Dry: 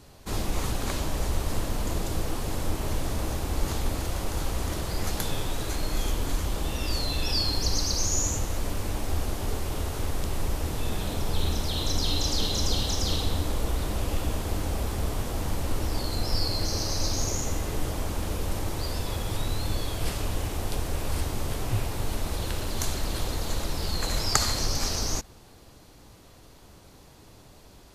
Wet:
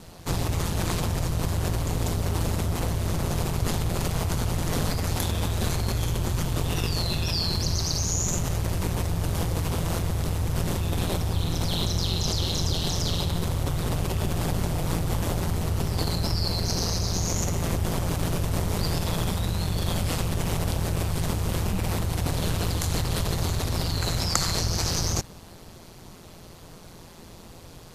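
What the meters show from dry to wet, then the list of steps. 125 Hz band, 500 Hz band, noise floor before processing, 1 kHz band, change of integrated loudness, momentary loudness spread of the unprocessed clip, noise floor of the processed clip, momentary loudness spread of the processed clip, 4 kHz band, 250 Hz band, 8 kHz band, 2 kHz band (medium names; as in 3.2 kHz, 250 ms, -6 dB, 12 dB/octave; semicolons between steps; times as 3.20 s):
+6.0 dB, +2.5 dB, -52 dBFS, +2.0 dB, +3.0 dB, 6 LU, -46 dBFS, 3 LU, +1.0 dB, +4.5 dB, +1.0 dB, +2.0 dB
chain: in parallel at +0.5 dB: compressor with a negative ratio -30 dBFS, ratio -0.5; on the sum: ring modulator 85 Hz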